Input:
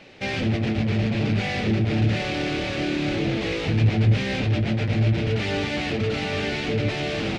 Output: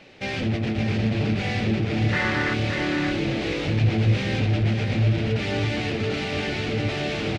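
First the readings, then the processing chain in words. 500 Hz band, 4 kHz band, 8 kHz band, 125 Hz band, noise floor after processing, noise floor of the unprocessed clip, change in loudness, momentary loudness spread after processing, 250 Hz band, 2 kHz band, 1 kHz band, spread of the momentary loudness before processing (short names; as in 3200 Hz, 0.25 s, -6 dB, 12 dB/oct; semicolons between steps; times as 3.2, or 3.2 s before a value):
-1.0 dB, -0.5 dB, n/a, -0.5 dB, -29 dBFS, -28 dBFS, -0.5 dB, 4 LU, -0.5 dB, +1.5 dB, +0.5 dB, 5 LU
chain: spectral gain 2.13–2.54, 850–2100 Hz +12 dB; echo 0.571 s -6 dB; gain -1.5 dB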